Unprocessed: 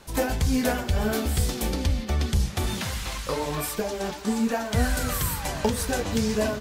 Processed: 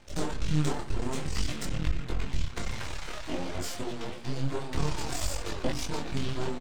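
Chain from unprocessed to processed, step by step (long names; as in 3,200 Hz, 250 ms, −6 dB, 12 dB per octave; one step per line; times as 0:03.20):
pitch shifter −9 semitones
half-wave rectification
micro pitch shift up and down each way 19 cents
level +2 dB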